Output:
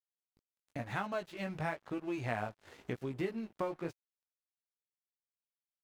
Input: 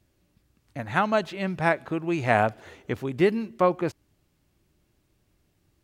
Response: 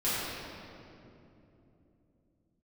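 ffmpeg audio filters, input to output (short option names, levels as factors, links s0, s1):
-af "flanger=delay=15:depth=4.9:speed=0.96,acompressor=threshold=0.00631:ratio=3,aeval=exprs='sgn(val(0))*max(abs(val(0))-0.00112,0)':c=same,volume=1.78"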